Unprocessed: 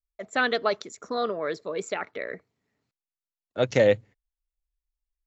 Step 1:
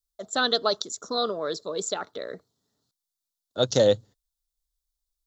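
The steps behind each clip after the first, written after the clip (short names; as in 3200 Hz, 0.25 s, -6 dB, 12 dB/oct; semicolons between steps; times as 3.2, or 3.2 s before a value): EQ curve 1400 Hz 0 dB, 2300 Hz -17 dB, 3600 Hz +10 dB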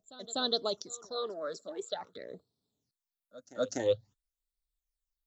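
phaser stages 8, 0.49 Hz, lowest notch 110–2200 Hz; pre-echo 0.247 s -18.5 dB; gain -6.5 dB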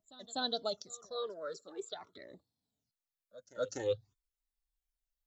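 cascading flanger falling 0.46 Hz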